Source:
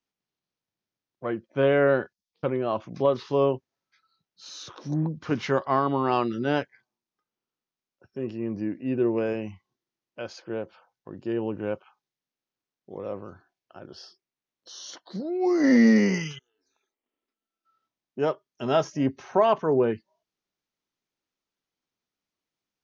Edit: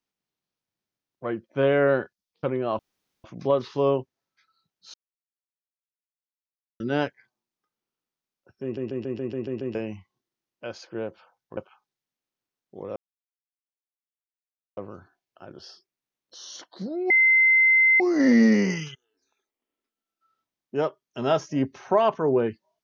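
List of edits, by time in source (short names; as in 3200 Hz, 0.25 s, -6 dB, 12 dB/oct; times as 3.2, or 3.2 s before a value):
2.79 insert room tone 0.45 s
4.49–6.35 mute
8.18 stutter in place 0.14 s, 8 plays
11.12–11.72 cut
13.11 insert silence 1.81 s
15.44 add tone 2070 Hz -14.5 dBFS 0.90 s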